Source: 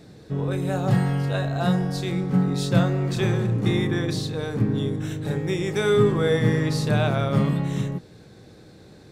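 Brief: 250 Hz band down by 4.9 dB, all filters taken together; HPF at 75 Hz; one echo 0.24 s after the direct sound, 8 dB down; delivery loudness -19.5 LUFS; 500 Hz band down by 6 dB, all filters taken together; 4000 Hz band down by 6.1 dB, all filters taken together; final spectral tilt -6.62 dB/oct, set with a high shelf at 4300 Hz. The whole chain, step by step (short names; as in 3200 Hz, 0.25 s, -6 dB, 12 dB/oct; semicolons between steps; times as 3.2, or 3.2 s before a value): HPF 75 Hz; bell 250 Hz -7 dB; bell 500 Hz -5 dB; bell 4000 Hz -5 dB; high shelf 4300 Hz -4 dB; echo 0.24 s -8 dB; gain +7.5 dB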